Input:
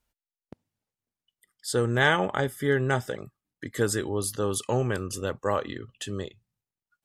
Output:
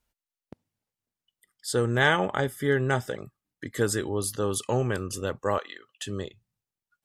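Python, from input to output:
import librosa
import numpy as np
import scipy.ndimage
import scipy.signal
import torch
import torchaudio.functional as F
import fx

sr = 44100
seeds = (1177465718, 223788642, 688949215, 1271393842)

y = fx.highpass(x, sr, hz=810.0, slope=12, at=(5.58, 6.06))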